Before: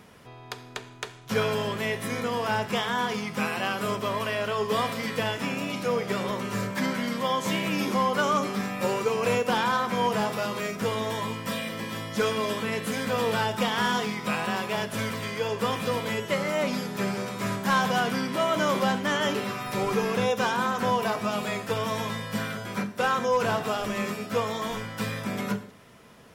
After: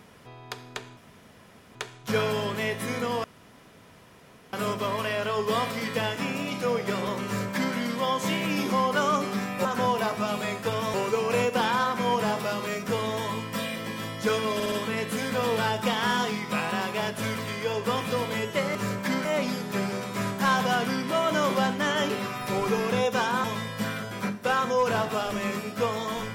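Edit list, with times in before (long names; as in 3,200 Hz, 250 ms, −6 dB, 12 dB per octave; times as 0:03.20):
0:00.97: splice in room tone 0.78 s
0:02.46–0:03.75: fill with room tone
0:06.47–0:06.97: duplicate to 0:16.50
0:12.47: stutter 0.06 s, 4 plays
0:20.69–0:21.98: move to 0:08.87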